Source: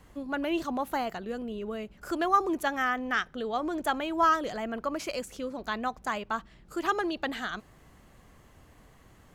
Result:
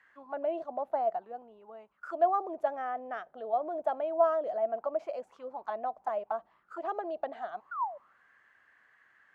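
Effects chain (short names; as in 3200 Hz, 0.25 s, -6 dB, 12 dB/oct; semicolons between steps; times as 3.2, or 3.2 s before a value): 7.71–7.98 painted sound fall 540–1500 Hz -36 dBFS; auto-wah 650–1800 Hz, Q 7.3, down, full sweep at -29.5 dBFS; 0.64–2.58 three-band expander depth 40%; gain +8.5 dB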